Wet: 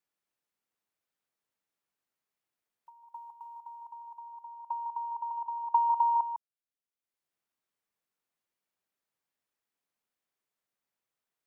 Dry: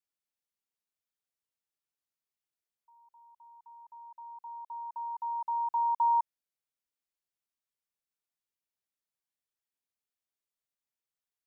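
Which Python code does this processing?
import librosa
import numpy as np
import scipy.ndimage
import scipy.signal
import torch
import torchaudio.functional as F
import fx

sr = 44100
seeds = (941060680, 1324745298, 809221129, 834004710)

p1 = fx.bessel_highpass(x, sr, hz=970.0, order=2, at=(3.3, 5.31))
p2 = fx.level_steps(p1, sr, step_db=15)
p3 = fx.transient(p2, sr, attack_db=8, sustain_db=-4)
p4 = p3 + fx.echo_single(p3, sr, ms=153, db=-9.5, dry=0)
p5 = fx.band_squash(p4, sr, depth_pct=40)
y = p5 * librosa.db_to_amplitude(7.0)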